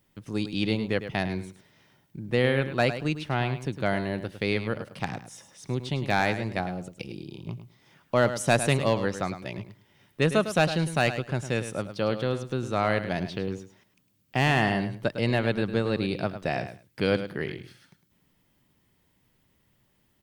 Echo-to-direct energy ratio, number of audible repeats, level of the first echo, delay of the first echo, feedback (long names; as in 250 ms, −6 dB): −11.0 dB, 2, −11.0 dB, 105 ms, 16%